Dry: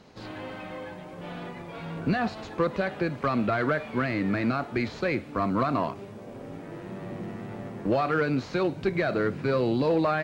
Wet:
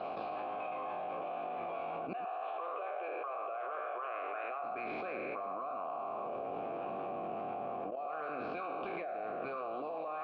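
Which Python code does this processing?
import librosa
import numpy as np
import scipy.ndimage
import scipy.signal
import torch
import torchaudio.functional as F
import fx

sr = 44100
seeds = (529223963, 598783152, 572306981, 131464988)

y = fx.spec_trails(x, sr, decay_s=1.11)
y = fx.ellip_bandpass(y, sr, low_hz=400.0, high_hz=3400.0, order=3, stop_db=40, at=(2.13, 4.64))
y = fx.hpss(y, sr, part='harmonic', gain_db=-13)
y = fx.level_steps(y, sr, step_db=24)
y = fx.transient(y, sr, attack_db=-11, sustain_db=3)
y = fx.vowel_filter(y, sr, vowel='a')
y = fx.air_absorb(y, sr, metres=280.0)
y = y + 10.0 ** (-11.5 / 20.0) * np.pad(y, (int(116 * sr / 1000.0), 0))[:len(y)]
y = fx.env_flatten(y, sr, amount_pct=100)
y = y * 10.0 ** (5.0 / 20.0)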